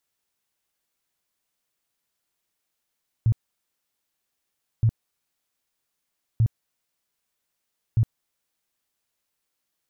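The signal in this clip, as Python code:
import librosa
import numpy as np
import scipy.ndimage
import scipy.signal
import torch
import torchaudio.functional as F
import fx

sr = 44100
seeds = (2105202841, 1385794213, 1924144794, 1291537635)

y = fx.tone_burst(sr, hz=113.0, cycles=7, every_s=1.57, bursts=4, level_db=-15.0)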